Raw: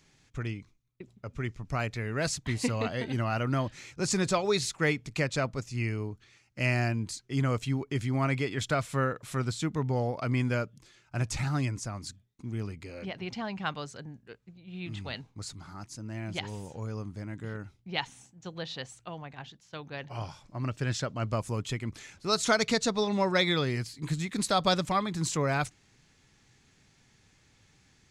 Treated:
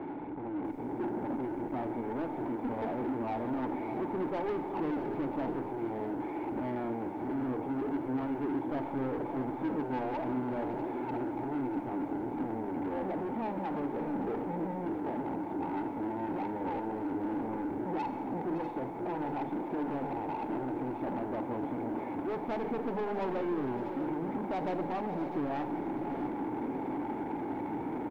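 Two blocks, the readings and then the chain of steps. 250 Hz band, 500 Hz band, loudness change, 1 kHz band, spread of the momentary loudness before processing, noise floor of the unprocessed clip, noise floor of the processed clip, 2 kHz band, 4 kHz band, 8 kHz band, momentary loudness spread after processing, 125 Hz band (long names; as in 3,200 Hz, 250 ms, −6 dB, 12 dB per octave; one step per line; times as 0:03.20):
+2.0 dB, −1.5 dB, −3.5 dB, 0.0 dB, 16 LU, −65 dBFS, −39 dBFS, −12.0 dB, below −20 dB, below −30 dB, 2 LU, −12.5 dB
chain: linear delta modulator 32 kbit/s, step −24 dBFS
formant resonators in series u
low-shelf EQ 210 Hz −10.5 dB
in parallel at −11.5 dB: soft clipping −38.5 dBFS, distortion −15 dB
on the sum: mains-hum notches 50/100/150/200 Hz
mid-hump overdrive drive 25 dB, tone 1,900 Hz, clips at −28 dBFS
high-shelf EQ 2,800 Hz +2.5 dB
single-tap delay 563 ms −12.5 dB
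automatic gain control gain up to 4 dB
four-comb reverb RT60 1.3 s, combs from 31 ms, DRR 11 dB
feedback echo at a low word length 646 ms, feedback 35%, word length 10 bits, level −11 dB
level −2.5 dB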